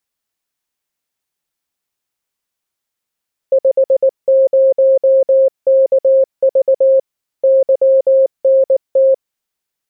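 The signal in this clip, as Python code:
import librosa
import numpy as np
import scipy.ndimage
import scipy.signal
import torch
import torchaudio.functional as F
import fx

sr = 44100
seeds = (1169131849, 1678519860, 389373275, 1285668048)

y = fx.morse(sr, text='50KV YNT', wpm=19, hz=534.0, level_db=-6.5)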